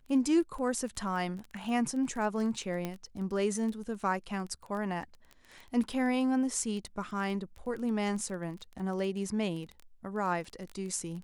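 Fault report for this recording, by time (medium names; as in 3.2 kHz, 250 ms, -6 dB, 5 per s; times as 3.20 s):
crackle 14 per s -37 dBFS
1.64 s: dropout 2.7 ms
2.85 s: pop -21 dBFS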